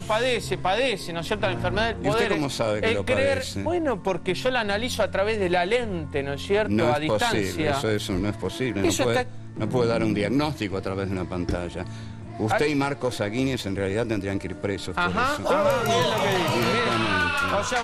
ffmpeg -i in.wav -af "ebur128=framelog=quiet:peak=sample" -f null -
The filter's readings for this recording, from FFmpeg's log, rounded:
Integrated loudness:
  I:         -24.4 LUFS
  Threshold: -34.5 LUFS
Loudness range:
  LRA:         3.4 LU
  Threshold: -44.8 LUFS
  LRA low:   -26.8 LUFS
  LRA high:  -23.4 LUFS
Sample peak:
  Peak:       -8.1 dBFS